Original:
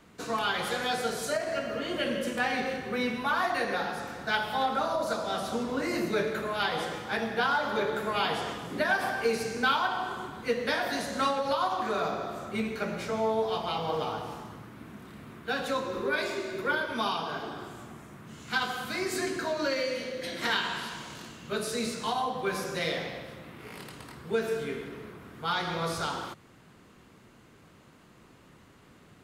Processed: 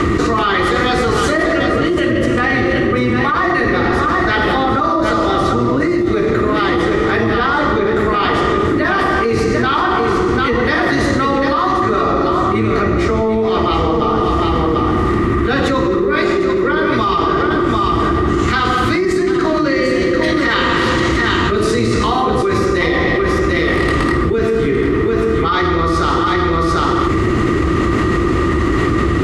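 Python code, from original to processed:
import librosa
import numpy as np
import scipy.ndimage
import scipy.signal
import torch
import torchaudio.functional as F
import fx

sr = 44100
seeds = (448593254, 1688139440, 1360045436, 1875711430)

p1 = fx.octave_divider(x, sr, octaves=1, level_db=0.0)
p2 = scipy.signal.sosfilt(scipy.signal.butter(2, 7100.0, 'lowpass', fs=sr, output='sos'), p1)
p3 = fx.peak_eq(p2, sr, hz=61.0, db=13.5, octaves=0.99)
p4 = fx.small_body(p3, sr, hz=(340.0, 1200.0, 1900.0), ring_ms=40, db=17)
p5 = p4 + fx.echo_single(p4, sr, ms=744, db=-8.5, dry=0)
p6 = fx.env_flatten(p5, sr, amount_pct=100)
y = p6 * librosa.db_to_amplitude(-3.0)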